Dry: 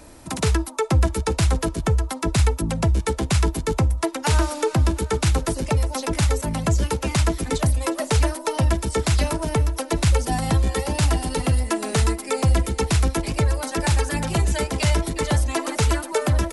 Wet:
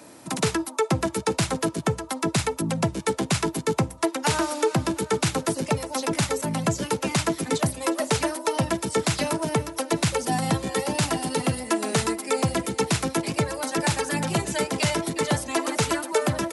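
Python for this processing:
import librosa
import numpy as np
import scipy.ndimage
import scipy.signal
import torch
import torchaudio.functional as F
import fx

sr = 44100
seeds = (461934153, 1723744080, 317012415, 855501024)

y = scipy.signal.sosfilt(scipy.signal.butter(4, 130.0, 'highpass', fs=sr, output='sos'), x)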